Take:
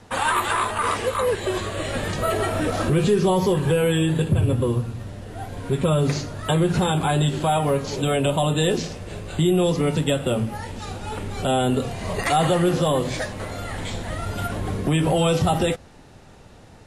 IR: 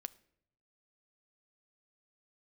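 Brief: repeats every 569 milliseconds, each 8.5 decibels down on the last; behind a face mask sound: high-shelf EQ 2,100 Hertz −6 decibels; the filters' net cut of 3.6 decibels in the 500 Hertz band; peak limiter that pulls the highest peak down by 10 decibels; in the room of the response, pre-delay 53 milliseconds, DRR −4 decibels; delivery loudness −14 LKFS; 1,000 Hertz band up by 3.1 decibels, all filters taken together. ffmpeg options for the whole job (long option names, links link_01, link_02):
-filter_complex "[0:a]equalizer=frequency=500:width_type=o:gain=-6,equalizer=frequency=1000:width_type=o:gain=7.5,alimiter=limit=-16dB:level=0:latency=1,aecho=1:1:569|1138|1707|2276:0.376|0.143|0.0543|0.0206,asplit=2[link_01][link_02];[1:a]atrim=start_sample=2205,adelay=53[link_03];[link_02][link_03]afir=irnorm=-1:irlink=0,volume=8dB[link_04];[link_01][link_04]amix=inputs=2:normalize=0,highshelf=frequency=2100:gain=-6,volume=6.5dB"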